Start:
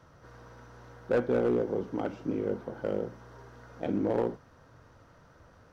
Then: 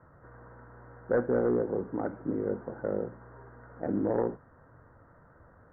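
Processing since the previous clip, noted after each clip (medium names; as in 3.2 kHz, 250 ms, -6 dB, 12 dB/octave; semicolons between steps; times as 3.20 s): steep low-pass 1.9 kHz 72 dB/octave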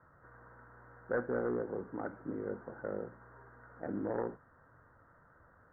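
peaking EQ 1.5 kHz +7.5 dB 1.3 oct; trim -8.5 dB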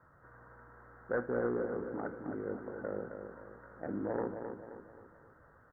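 feedback delay 264 ms, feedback 45%, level -7 dB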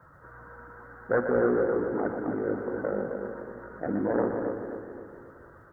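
coarse spectral quantiser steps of 15 dB; two-band feedback delay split 420 Hz, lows 227 ms, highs 122 ms, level -7.5 dB; trim +9 dB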